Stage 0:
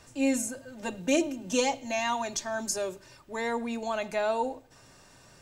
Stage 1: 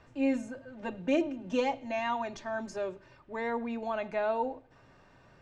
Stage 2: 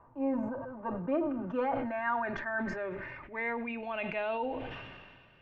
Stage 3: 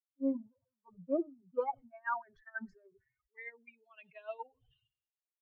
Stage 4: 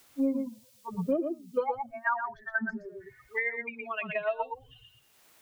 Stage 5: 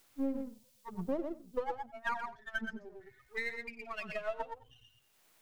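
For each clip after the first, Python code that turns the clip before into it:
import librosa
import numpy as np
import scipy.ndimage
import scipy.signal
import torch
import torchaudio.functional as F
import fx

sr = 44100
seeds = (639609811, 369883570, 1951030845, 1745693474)

y1 = scipy.signal.sosfilt(scipy.signal.butter(2, 2400.0, 'lowpass', fs=sr, output='sos'), x)
y1 = y1 * librosa.db_to_amplitude(-2.0)
y2 = fx.filter_sweep_lowpass(y1, sr, from_hz=1000.0, to_hz=2900.0, start_s=0.57, end_s=4.28, q=5.2)
y2 = fx.sustainer(y2, sr, db_per_s=33.0)
y2 = y2 * librosa.db_to_amplitude(-5.0)
y3 = fx.bin_expand(y2, sr, power=3.0)
y3 = fx.upward_expand(y3, sr, threshold_db=-45.0, expansion=2.5)
y3 = y3 * librosa.db_to_amplitude(3.5)
y4 = y3 + 10.0 ** (-7.0 / 20.0) * np.pad(y3, (int(117 * sr / 1000.0), 0))[:len(y3)]
y4 = fx.band_squash(y4, sr, depth_pct=100)
y4 = y4 * librosa.db_to_amplitude(8.5)
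y5 = np.where(y4 < 0.0, 10.0 ** (-7.0 / 20.0) * y4, y4)
y5 = y5 + 10.0 ** (-19.0 / 20.0) * np.pad(y5, (int(93 * sr / 1000.0), 0))[:len(y5)]
y5 = y5 * librosa.db_to_amplitude(-4.5)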